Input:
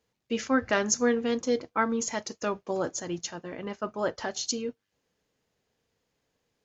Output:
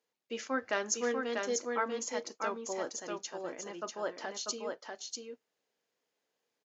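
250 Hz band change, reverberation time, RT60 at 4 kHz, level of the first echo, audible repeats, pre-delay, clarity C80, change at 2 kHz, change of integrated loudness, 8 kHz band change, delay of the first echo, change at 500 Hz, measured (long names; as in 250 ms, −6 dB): −11.5 dB, no reverb audible, no reverb audible, −4.0 dB, 1, no reverb audible, no reverb audible, −5.0 dB, −7.0 dB, can't be measured, 643 ms, −6.0 dB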